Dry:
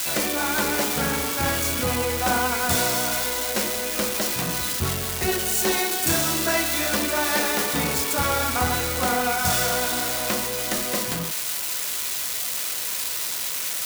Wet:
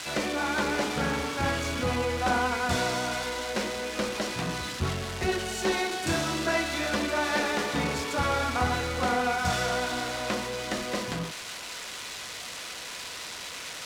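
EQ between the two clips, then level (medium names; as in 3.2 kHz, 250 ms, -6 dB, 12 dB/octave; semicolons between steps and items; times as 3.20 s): distance through air 50 m; treble shelf 8.1 kHz -11 dB; -2.5 dB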